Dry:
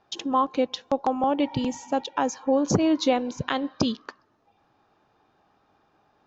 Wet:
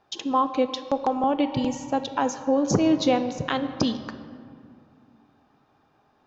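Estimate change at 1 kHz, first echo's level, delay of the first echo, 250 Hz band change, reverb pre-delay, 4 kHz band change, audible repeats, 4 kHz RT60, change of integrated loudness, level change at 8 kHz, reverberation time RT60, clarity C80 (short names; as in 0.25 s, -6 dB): +0.5 dB, none, none, +1.0 dB, 4 ms, +0.5 dB, none, 1.3 s, +0.5 dB, n/a, 2.3 s, 12.0 dB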